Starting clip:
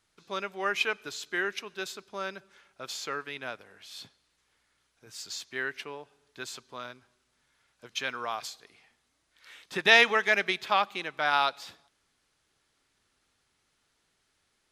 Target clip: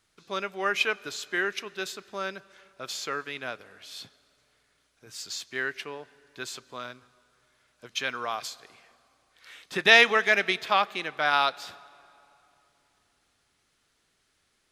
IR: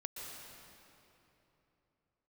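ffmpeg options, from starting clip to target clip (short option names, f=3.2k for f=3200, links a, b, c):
-filter_complex "[0:a]equalizer=f=890:w=7.8:g=-4,asplit=2[a][b];[1:a]atrim=start_sample=2205,adelay=32[c];[b][c]afir=irnorm=-1:irlink=0,volume=-20.5dB[d];[a][d]amix=inputs=2:normalize=0,volume=2.5dB"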